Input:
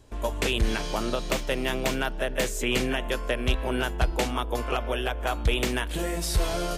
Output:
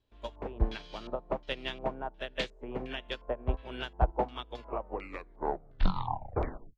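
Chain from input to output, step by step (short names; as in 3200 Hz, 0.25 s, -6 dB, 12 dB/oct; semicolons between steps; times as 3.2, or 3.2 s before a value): tape stop at the end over 2.22 s; LFO low-pass square 1.4 Hz 870–3700 Hz; upward expander 2.5:1, over -32 dBFS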